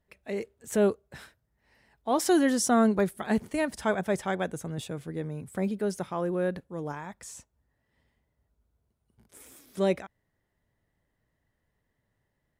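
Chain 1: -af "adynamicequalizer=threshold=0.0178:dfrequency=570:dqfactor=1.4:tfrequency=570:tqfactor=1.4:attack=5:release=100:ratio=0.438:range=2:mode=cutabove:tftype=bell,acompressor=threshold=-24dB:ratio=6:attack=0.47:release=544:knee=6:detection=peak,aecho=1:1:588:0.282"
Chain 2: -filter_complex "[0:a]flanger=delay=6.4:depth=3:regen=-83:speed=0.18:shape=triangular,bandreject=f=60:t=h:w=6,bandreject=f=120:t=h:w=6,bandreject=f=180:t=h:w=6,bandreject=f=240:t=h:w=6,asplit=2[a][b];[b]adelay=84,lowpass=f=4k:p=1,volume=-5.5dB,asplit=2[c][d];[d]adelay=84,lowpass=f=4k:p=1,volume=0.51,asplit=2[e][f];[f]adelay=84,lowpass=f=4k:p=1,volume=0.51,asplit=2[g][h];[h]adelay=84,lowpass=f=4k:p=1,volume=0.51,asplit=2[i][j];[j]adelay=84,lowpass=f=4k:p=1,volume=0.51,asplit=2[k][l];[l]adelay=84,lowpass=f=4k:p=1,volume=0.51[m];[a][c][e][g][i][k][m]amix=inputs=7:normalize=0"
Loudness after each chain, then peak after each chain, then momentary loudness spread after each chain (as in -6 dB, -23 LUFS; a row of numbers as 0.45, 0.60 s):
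-35.0, -32.5 LUFS; -20.0, -14.0 dBFS; 15, 17 LU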